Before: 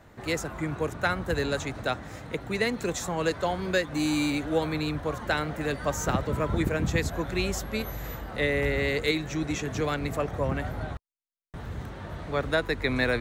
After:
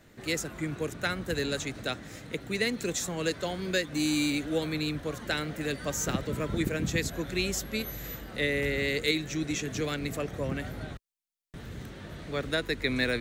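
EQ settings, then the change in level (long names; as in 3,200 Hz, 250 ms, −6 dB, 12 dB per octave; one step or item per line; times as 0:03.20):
parametric band 71 Hz −7 dB 1.5 octaves
low-shelf EQ 210 Hz −4.5 dB
parametric band 910 Hz −13 dB 1.6 octaves
+3.0 dB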